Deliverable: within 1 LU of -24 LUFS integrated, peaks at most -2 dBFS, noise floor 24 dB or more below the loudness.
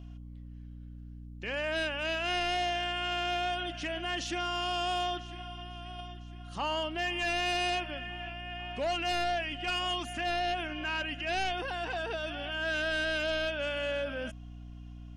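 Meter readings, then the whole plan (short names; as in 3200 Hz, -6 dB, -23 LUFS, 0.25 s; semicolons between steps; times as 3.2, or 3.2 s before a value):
hum 60 Hz; harmonics up to 300 Hz; hum level -43 dBFS; loudness -32.5 LUFS; peak -25.0 dBFS; loudness target -24.0 LUFS
-> notches 60/120/180/240/300 Hz; gain +8.5 dB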